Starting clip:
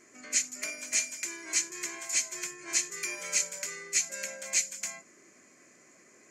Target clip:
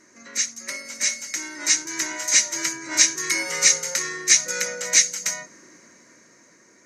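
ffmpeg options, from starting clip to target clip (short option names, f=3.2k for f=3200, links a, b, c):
-af "dynaudnorm=f=340:g=9:m=8.5dB,asetrate=40517,aresample=44100,volume=3.5dB"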